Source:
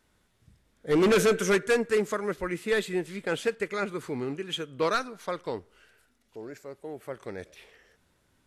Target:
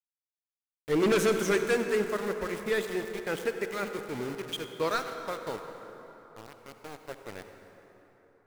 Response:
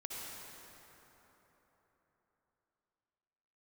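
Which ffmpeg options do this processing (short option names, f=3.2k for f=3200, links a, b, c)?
-filter_complex "[0:a]bandreject=f=176.3:t=h:w=4,bandreject=f=352.6:t=h:w=4,aeval=exprs='val(0)*gte(abs(val(0)),0.0188)':c=same,asplit=2[a][b];[1:a]atrim=start_sample=2205[c];[b][c]afir=irnorm=-1:irlink=0,volume=-2.5dB[d];[a][d]amix=inputs=2:normalize=0,volume=-6dB"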